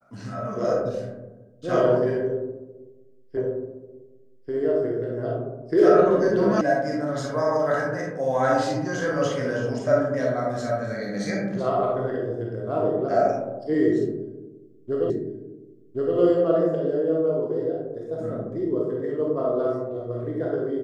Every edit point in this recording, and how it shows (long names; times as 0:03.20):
0:03.37: the same again, the last 1.14 s
0:06.61: cut off before it has died away
0:15.10: the same again, the last 1.07 s